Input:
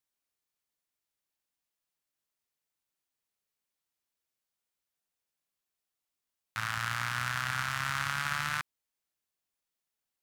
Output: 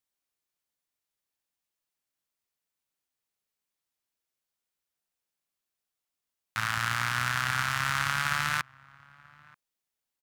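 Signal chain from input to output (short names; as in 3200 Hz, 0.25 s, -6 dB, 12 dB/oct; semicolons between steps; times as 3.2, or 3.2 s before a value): in parallel at -4 dB: sample gate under -41.5 dBFS; on the sum: outdoor echo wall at 160 m, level -24 dB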